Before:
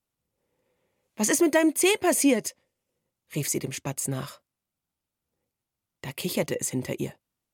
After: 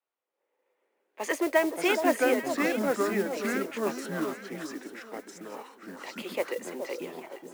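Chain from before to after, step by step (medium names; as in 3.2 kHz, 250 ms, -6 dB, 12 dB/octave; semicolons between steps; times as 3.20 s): high-pass 280 Hz 24 dB/octave; three-band isolator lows -18 dB, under 380 Hz, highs -18 dB, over 2.9 kHz; ever faster or slower copies 265 ms, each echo -4 st, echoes 2; echo whose repeats swap between lows and highs 421 ms, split 1.1 kHz, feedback 53%, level -7 dB; modulation noise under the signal 19 dB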